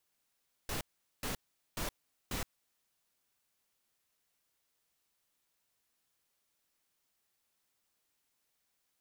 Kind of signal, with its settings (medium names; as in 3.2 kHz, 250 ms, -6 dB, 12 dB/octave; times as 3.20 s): noise bursts pink, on 0.12 s, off 0.42 s, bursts 4, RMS -37 dBFS